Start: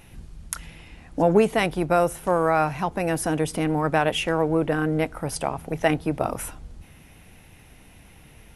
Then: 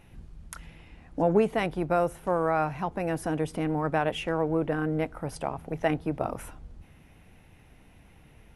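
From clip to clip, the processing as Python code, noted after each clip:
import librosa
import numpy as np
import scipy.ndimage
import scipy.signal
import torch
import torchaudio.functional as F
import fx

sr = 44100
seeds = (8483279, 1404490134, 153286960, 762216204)

y = fx.high_shelf(x, sr, hz=3300.0, db=-9.5)
y = y * 10.0 ** (-4.5 / 20.0)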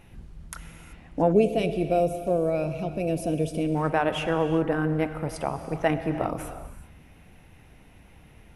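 y = fx.rev_gated(x, sr, seeds[0], gate_ms=410, shape='flat', drr_db=9.0)
y = fx.spec_box(y, sr, start_s=1.33, length_s=2.43, low_hz=720.0, high_hz=2200.0, gain_db=-18)
y = y * 10.0 ** (2.5 / 20.0)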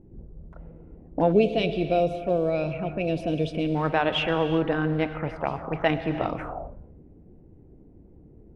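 y = fx.envelope_lowpass(x, sr, base_hz=320.0, top_hz=3800.0, q=2.7, full_db=-23.5, direction='up')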